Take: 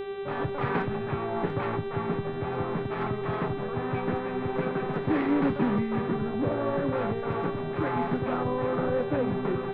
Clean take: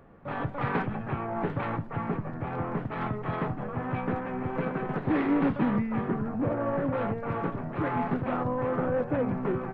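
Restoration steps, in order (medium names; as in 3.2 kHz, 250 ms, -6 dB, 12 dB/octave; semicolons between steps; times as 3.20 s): de-hum 390.4 Hz, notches 10; band-stop 400 Hz, Q 30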